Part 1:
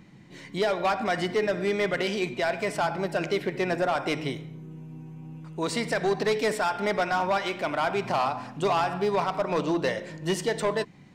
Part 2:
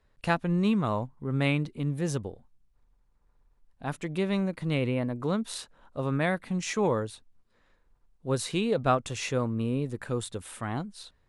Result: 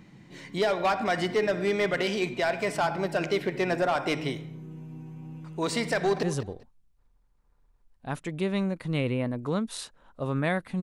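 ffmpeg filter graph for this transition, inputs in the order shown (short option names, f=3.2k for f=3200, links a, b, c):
-filter_complex "[0:a]apad=whole_dur=10.82,atrim=end=10.82,atrim=end=6.232[a];[1:a]atrim=start=1.998:end=6.59[b];[a][b]acrossfade=d=0.004:c1=hsin:c2=hsin,asplit=2[c][d];[d]afade=t=in:st=5.96:d=0.01,afade=t=out:st=6.23:d=0.01,aecho=0:1:200|400:0.223872|0.0447744[e];[c][e]amix=inputs=2:normalize=0"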